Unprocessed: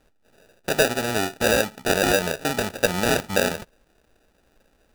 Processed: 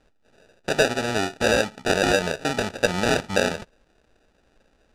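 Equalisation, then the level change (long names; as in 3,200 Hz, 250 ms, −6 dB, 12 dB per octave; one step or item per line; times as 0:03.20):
low-pass filter 7,100 Hz 12 dB per octave
0.0 dB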